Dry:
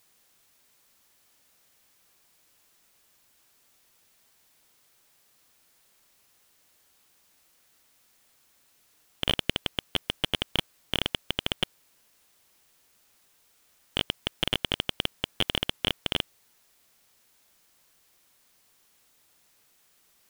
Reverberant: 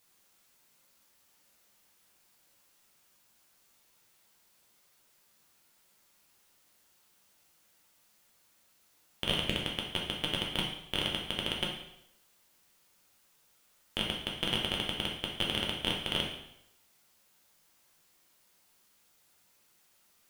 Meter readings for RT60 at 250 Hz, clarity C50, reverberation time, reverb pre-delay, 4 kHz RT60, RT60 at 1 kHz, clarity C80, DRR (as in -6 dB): 0.75 s, 4.5 dB, 0.80 s, 4 ms, 0.70 s, 0.80 s, 7.5 dB, -2.0 dB